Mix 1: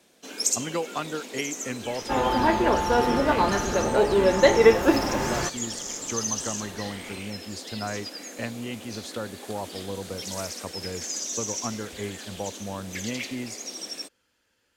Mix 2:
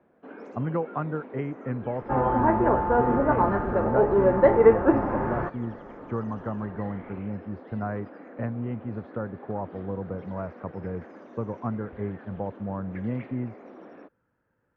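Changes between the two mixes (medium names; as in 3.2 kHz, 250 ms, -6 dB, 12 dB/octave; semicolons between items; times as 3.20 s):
speech: add peaking EQ 140 Hz +12.5 dB 0.67 oct; master: add low-pass 1.5 kHz 24 dB/octave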